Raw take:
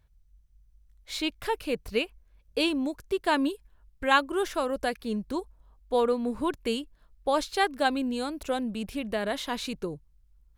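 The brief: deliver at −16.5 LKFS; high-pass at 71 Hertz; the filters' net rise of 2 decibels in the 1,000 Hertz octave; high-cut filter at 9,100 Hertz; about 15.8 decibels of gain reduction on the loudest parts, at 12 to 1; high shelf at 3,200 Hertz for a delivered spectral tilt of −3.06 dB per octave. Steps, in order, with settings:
high-pass filter 71 Hz
low-pass filter 9,100 Hz
parametric band 1,000 Hz +3 dB
high-shelf EQ 3,200 Hz −5 dB
downward compressor 12 to 1, threshold −31 dBFS
level +20.5 dB

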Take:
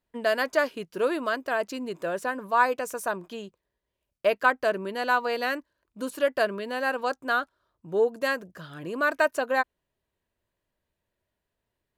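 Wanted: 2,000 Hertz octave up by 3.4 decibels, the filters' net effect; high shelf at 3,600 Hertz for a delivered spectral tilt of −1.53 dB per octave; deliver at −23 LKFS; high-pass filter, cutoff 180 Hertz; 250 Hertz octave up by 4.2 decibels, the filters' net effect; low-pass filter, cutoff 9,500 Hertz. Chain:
high-pass filter 180 Hz
low-pass filter 9,500 Hz
parametric band 250 Hz +6 dB
parametric band 2,000 Hz +5.5 dB
high-shelf EQ 3,600 Hz −3.5 dB
level +2.5 dB

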